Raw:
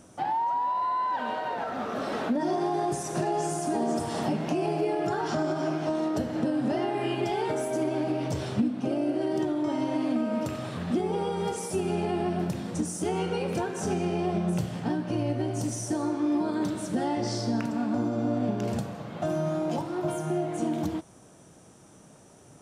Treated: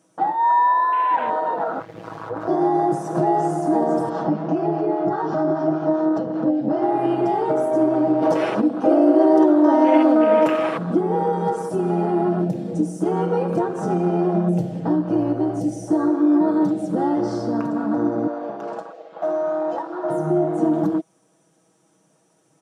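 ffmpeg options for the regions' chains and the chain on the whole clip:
ffmpeg -i in.wav -filter_complex "[0:a]asettb=1/sr,asplit=3[link_01][link_02][link_03];[link_01]atrim=end=1.794[link_04];[link_02]atrim=start=1.79:end=2.48,asetpts=PTS-STARTPTS,afade=type=in:duration=0.004:curve=qsin,afade=type=out:start_time=0.686:duration=0.004:curve=qsin,highpass=frequency=210:poles=1,aeval=exprs='abs(val(0))':channel_layout=same,tremolo=f=110:d=0.824[link_05];[link_03]atrim=start=2.476[link_06];[link_04][link_05]acrossfade=duration=0.004:curve1=hsin:curve2=qsin[link_07];[link_07][link_06]acrossfade=duration=0.004:curve1=qsin:curve2=hsin,asettb=1/sr,asplit=3[link_08][link_09][link_10];[link_08]atrim=end=4.094[link_11];[link_09]atrim=start=4.09:end=6.82,asetpts=PTS-STARTPTS,afade=type=in:duration=0.004:curve=qsin,afade=type=out:start_time=2.726:duration=0.004:curve=qsin,lowpass=frequency=6400:width=0.5412,lowpass=frequency=6400:width=1.3066,acrossover=split=740[link_12][link_13];[link_12]aeval=exprs='val(0)*(1-0.5/2+0.5/2*cos(2*PI*5*n/s))':channel_layout=same[link_14];[link_13]aeval=exprs='val(0)*(1-0.5/2-0.5/2*cos(2*PI*5*n/s))':channel_layout=same[link_15];[link_14][link_15]amix=inputs=2:normalize=0[link_16];[link_10]atrim=start=6.816[link_17];[link_11][link_16]acrossfade=duration=0.004:curve1=hsin:curve2=qsin[link_18];[link_18][link_17]acrossfade=duration=0.004:curve1=qsin:curve2=hsin,asettb=1/sr,asplit=3[link_19][link_20][link_21];[link_19]atrim=end=8.224[link_22];[link_20]atrim=start=8.22:end=10.78,asetpts=PTS-STARTPTS,afade=type=in:duration=0.004:curve=qsin,afade=type=out:start_time=2.556:duration=0.004:curve=qsin,highpass=340,acontrast=88,bandreject=frequency=7700:width=11[link_23];[link_21]atrim=start=10.776[link_24];[link_22][link_23]acrossfade=duration=0.004:curve1=hsin:curve2=qsin[link_25];[link_25][link_24]acrossfade=duration=0.004:curve1=qsin:curve2=hsin,asettb=1/sr,asplit=3[link_26][link_27][link_28];[link_26]atrim=end=18.274[link_29];[link_27]atrim=start=18.27:end=20.1,asetpts=PTS-STARTPTS,afade=type=in:duration=0.004:curve=qsin,afade=type=out:start_time=1.826:duration=0.004:curve=qsin,highpass=550,lowpass=6200,asoftclip=type=hard:threshold=-26.5dB[link_30];[link_28]atrim=start=20.096[link_31];[link_29][link_30]acrossfade=duration=0.004:curve1=hsin:curve2=qsin[link_32];[link_32][link_31]acrossfade=duration=0.004:curve1=qsin:curve2=hsin,highpass=190,afwtdn=0.0178,aecho=1:1:6.2:0.65,volume=7.5dB" out.wav

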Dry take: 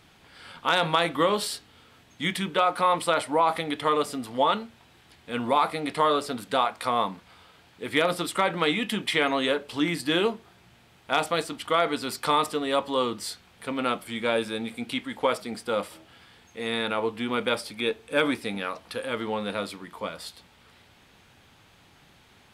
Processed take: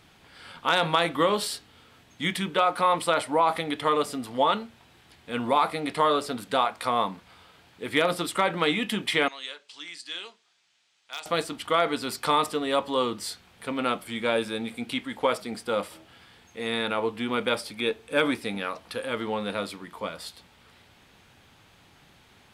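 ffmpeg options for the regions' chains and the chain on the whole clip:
ffmpeg -i in.wav -filter_complex "[0:a]asettb=1/sr,asplit=3[link_01][link_02][link_03];[link_01]atrim=end=9.284[link_04];[link_02]atrim=start=9.28:end=11.26,asetpts=PTS-STARTPTS,afade=type=in:duration=0.004:curve=qsin,afade=type=out:start_time=1.976:duration=0.004:curve=qsin,lowpass=frequency=7000:width=0.5412,lowpass=frequency=7000:width=1.3066,asoftclip=type=hard:threshold=-10.5dB,aderivative[link_05];[link_03]atrim=start=11.256[link_06];[link_04][link_05]acrossfade=duration=0.004:curve1=hsin:curve2=qsin[link_07];[link_07][link_06]acrossfade=duration=0.004:curve1=qsin:curve2=hsin" out.wav

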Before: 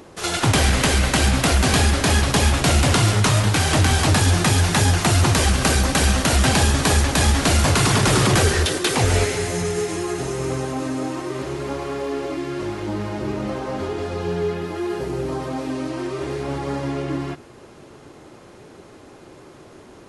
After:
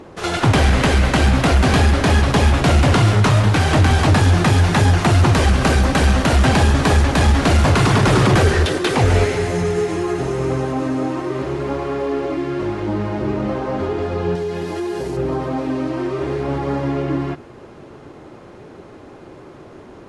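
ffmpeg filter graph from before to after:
ffmpeg -i in.wav -filter_complex "[0:a]asettb=1/sr,asplit=3[link_01][link_02][link_03];[link_01]atrim=end=14.354[link_04];[link_02]atrim=start=14.35:end=15.17,asetpts=PTS-STARTPTS,afade=type=in:duration=0.004:curve=qsin,afade=type=out:start_time=0.816:duration=0.004:curve=qsin,asuperstop=centerf=1300:order=4:qfactor=8,bass=frequency=250:gain=-2,treble=frequency=4000:gain=13,acompressor=threshold=-24dB:ratio=6:attack=3.2:release=140:knee=1:detection=peak[link_05];[link_03]atrim=start=15.166[link_06];[link_04][link_05]acrossfade=duration=0.004:curve1=hsin:curve2=qsin[link_07];[link_07][link_06]acrossfade=duration=0.004:curve1=qsin:curve2=hsin,lowpass=frequency=2000:poles=1,acontrast=64,volume=-1.5dB" out.wav

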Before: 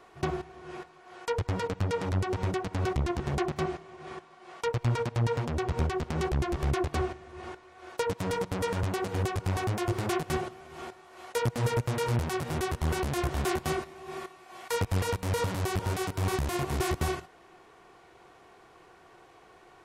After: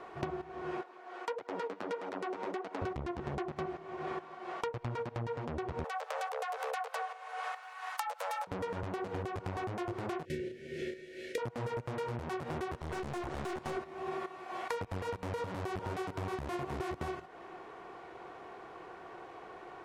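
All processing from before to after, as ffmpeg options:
ffmpeg -i in.wav -filter_complex "[0:a]asettb=1/sr,asplit=3[link_01][link_02][link_03];[link_01]atrim=end=0.814[link_04];[link_02]atrim=start=0.81:end=2.82,asetpts=PTS-STARTPTS,afade=type=in:duration=0.004:curve=qsin,afade=type=out:start_time=2.006:duration=0.004:curve=qsin,highpass=frequency=250:width=0.5412,highpass=frequency=250:width=1.3066,flanger=delay=1.3:depth=8.8:regen=54:speed=1.6:shape=sinusoidal[link_05];[link_03]atrim=start=2.816[link_06];[link_04][link_05]acrossfade=duration=0.004:curve1=hsin:curve2=qsin[link_07];[link_07][link_06]acrossfade=duration=0.004:curve1=qsin:curve2=hsin,asettb=1/sr,asplit=3[link_08][link_09][link_10];[link_08]atrim=end=5.844[link_11];[link_09]atrim=start=5.84:end=8.47,asetpts=PTS-STARTPTS,afade=type=in:duration=0.004:curve=qsin,afade=type=out:start_time=2.626:duration=0.004:curve=qsin,aemphasis=mode=production:type=bsi,afreqshift=380[link_12];[link_10]atrim=start=8.466[link_13];[link_11][link_12]acrossfade=duration=0.004:curve1=hsin:curve2=qsin[link_14];[link_14][link_13]acrossfade=duration=0.004:curve1=qsin:curve2=hsin,asettb=1/sr,asplit=3[link_15][link_16][link_17];[link_15]atrim=end=10.254[link_18];[link_16]atrim=start=10.25:end=11.38,asetpts=PTS-STARTPTS,afade=type=in:duration=0.004:curve=qsin,afade=type=out:start_time=1.126:duration=0.004:curve=qsin,asuperstop=centerf=970:order=12:qfactor=0.85,asplit=2[link_19][link_20];[link_20]adelay=33,volume=-3dB[link_21];[link_19][link_21]amix=inputs=2:normalize=0,atrim=end_sample=49833[link_22];[link_17]atrim=start=11.376[link_23];[link_18][link_22]acrossfade=duration=0.004:curve1=hsin:curve2=qsin[link_24];[link_24][link_23]acrossfade=duration=0.004:curve1=qsin:curve2=hsin,asettb=1/sr,asplit=3[link_25][link_26][link_27];[link_25]atrim=end=12.774[link_28];[link_26]atrim=start=12.77:end=13.77,asetpts=PTS-STARTPTS,afade=type=in:duration=0.004:curve=qsin,afade=type=out:start_time=0.996:duration=0.004:curve=qsin,lowpass=8500,highshelf=frequency=6200:gain=11,aeval=exprs='(tanh(44.7*val(0)+0.7)-tanh(0.7))/44.7':channel_layout=same[link_29];[link_27]atrim=start=13.766[link_30];[link_28][link_29]acrossfade=duration=0.004:curve1=hsin:curve2=qsin[link_31];[link_31][link_30]acrossfade=duration=0.004:curve1=qsin:curve2=hsin,lowpass=frequency=1300:poles=1,lowshelf=frequency=180:gain=-11.5,acompressor=threshold=-44dB:ratio=10,volume=9.5dB" out.wav

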